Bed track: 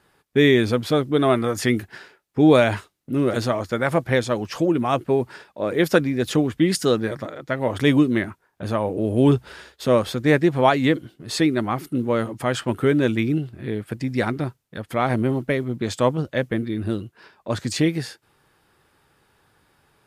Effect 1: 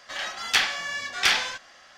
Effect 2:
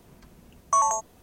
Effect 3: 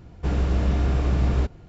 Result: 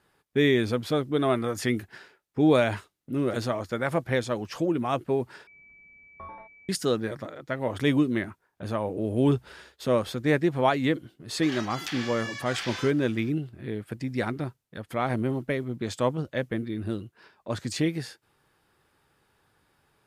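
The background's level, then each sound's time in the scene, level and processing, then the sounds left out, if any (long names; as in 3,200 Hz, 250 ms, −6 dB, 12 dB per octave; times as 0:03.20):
bed track −6 dB
0:05.47: overwrite with 2 −17.5 dB + switching amplifier with a slow clock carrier 2,300 Hz
0:11.33: mix in 1 −5.5 dB + downward compressor 10 to 1, threshold −25 dBFS
not used: 3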